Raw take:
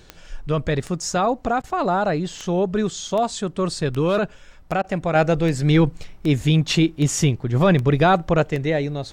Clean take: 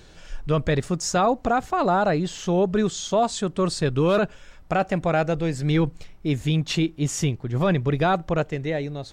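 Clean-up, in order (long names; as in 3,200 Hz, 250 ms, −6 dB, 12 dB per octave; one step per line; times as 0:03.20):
click removal
repair the gap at 0:01.62/0:04.82, 18 ms
level 0 dB, from 0:05.15 −5 dB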